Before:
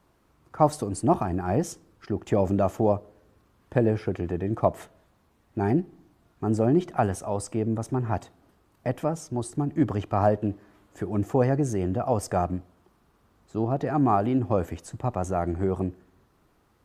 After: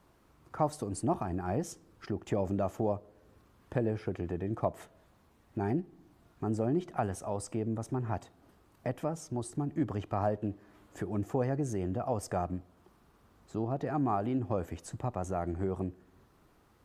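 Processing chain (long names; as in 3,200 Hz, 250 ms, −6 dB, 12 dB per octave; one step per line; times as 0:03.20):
downward compressor 1.5 to 1, threshold −42 dBFS, peak gain reduction 10 dB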